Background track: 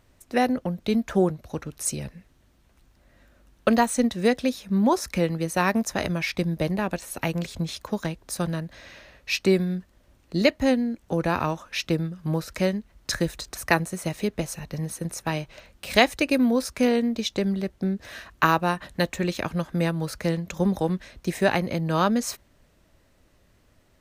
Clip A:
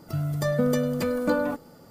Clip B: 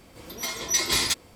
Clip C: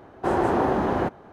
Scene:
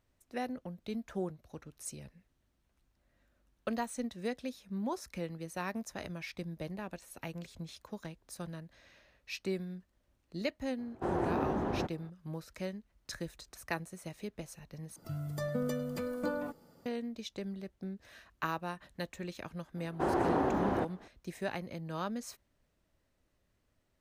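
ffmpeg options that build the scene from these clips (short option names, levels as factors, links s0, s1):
-filter_complex "[3:a]asplit=2[s0][s1];[0:a]volume=0.168[s2];[s0]lowshelf=f=370:g=7[s3];[s1]equalizer=f=280:w=5.7:g=4[s4];[s2]asplit=2[s5][s6];[s5]atrim=end=14.964[s7];[1:a]atrim=end=1.9,asetpts=PTS-STARTPTS,volume=0.282[s8];[s6]atrim=start=16.856[s9];[s3]atrim=end=1.32,asetpts=PTS-STARTPTS,volume=0.211,afade=t=in:d=0.004:c=hsin,afade=t=out:st=1.316:d=0.004:c=hsin,adelay=10780[s10];[s4]atrim=end=1.32,asetpts=PTS-STARTPTS,volume=0.376,afade=t=in:d=0.004:c=hsin,afade=t=out:st=1.316:d=0.004:c=hsin,adelay=19760[s11];[s7][s8]acrossfade=d=0.004:c1=hsin:c2=hsin[s12];[s12][s9]acrossfade=d=0.004:c1=hsin:c2=hsin[s13];[s13][s10][s11]amix=inputs=3:normalize=0"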